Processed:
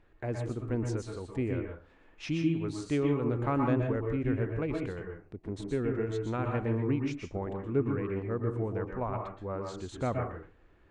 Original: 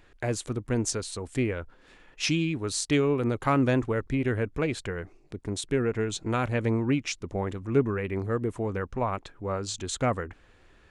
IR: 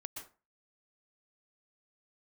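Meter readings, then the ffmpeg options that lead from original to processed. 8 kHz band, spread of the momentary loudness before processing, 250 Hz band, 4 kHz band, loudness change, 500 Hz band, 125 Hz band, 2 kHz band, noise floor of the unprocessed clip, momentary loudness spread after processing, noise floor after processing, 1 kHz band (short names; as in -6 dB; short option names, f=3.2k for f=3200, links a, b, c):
under -15 dB, 9 LU, -3.0 dB, -14.0 dB, -4.0 dB, -4.0 dB, -2.5 dB, -8.5 dB, -58 dBFS, 10 LU, -61 dBFS, -5.0 dB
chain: -filter_complex "[0:a]lowpass=f=1.2k:p=1[a];[1:a]atrim=start_sample=2205[b];[a][b]afir=irnorm=-1:irlink=0"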